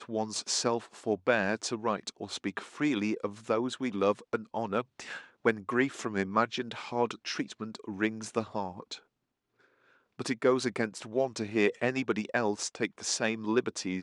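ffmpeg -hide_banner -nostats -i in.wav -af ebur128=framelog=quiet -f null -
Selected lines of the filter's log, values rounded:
Integrated loudness:
  I:         -31.6 LUFS
  Threshold: -42.0 LUFS
Loudness range:
  LRA:         4.7 LU
  Threshold: -52.4 LUFS
  LRA low:   -35.5 LUFS
  LRA high:  -30.8 LUFS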